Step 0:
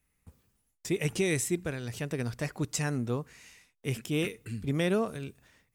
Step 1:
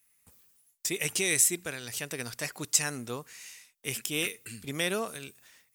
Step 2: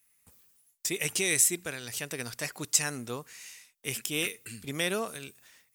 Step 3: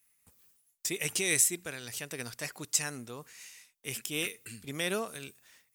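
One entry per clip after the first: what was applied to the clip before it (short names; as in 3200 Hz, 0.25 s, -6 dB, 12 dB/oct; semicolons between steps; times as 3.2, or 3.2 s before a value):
tilt +3.5 dB/oct
nothing audible
noise-modulated level, depth 60%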